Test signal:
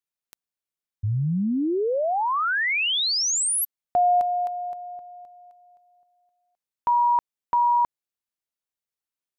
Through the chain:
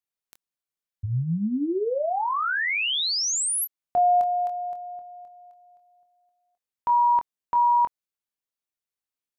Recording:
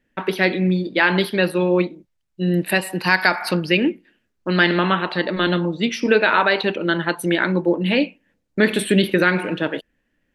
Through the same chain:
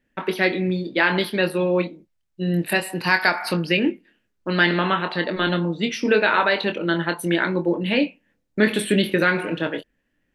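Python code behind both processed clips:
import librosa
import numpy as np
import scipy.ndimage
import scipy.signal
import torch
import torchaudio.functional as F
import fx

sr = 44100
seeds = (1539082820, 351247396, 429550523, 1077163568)

y = fx.doubler(x, sr, ms=24.0, db=-8.0)
y = y * librosa.db_to_amplitude(-2.5)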